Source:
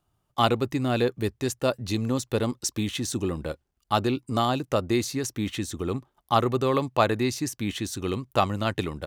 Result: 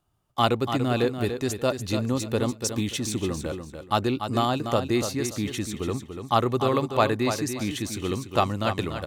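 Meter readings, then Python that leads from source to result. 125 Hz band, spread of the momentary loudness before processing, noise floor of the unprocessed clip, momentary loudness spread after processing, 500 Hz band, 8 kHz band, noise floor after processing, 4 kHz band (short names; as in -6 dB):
+0.5 dB, 7 LU, -76 dBFS, 7 LU, +0.5 dB, +0.5 dB, -48 dBFS, +0.5 dB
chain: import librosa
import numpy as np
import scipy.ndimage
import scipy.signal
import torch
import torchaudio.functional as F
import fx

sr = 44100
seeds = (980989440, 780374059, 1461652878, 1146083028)

y = fx.echo_feedback(x, sr, ms=290, feedback_pct=24, wet_db=-8)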